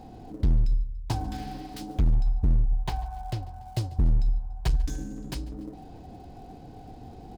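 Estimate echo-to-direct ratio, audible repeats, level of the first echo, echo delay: -20.0 dB, 2, -21.0 dB, 0.144 s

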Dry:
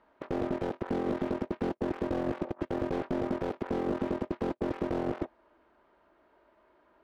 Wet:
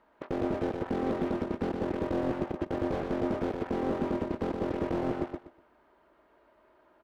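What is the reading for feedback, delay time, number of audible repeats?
23%, 0.122 s, 3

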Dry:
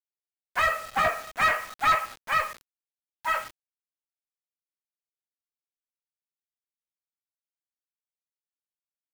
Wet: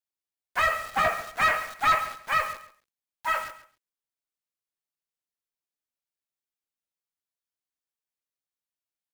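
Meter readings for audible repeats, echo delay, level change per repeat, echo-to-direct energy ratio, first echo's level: 2, 0.136 s, -14.0 dB, -14.0 dB, -14.0 dB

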